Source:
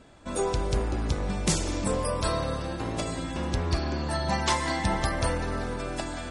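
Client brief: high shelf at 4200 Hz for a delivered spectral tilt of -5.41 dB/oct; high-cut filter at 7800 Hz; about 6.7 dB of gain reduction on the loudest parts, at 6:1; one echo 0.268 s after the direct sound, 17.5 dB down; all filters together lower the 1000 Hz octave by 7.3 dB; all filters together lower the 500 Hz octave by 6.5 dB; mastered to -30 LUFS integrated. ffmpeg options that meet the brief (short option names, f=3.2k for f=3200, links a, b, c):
-af "lowpass=7.8k,equalizer=f=500:t=o:g=-6.5,equalizer=f=1k:t=o:g=-6.5,highshelf=f=4.2k:g=-9,acompressor=threshold=-29dB:ratio=6,aecho=1:1:268:0.133,volume=5dB"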